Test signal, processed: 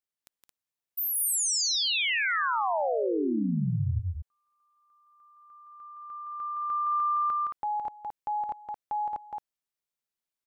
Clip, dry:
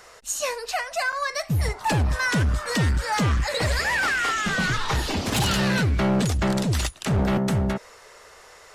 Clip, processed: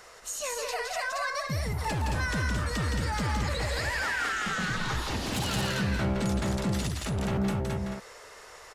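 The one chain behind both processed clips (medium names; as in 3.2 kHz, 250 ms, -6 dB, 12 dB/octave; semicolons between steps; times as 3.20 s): peak limiter -24 dBFS; loudspeakers at several distances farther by 57 m -4 dB, 76 m -5 dB; trim -2.5 dB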